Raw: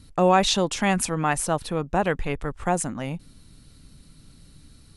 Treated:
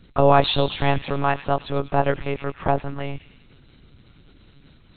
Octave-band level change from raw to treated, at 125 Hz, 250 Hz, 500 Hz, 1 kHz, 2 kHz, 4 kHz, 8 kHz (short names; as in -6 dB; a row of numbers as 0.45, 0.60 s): +4.0 dB, -1.5 dB, +3.5 dB, +2.0 dB, -0.5 dB, +0.5 dB, under -40 dB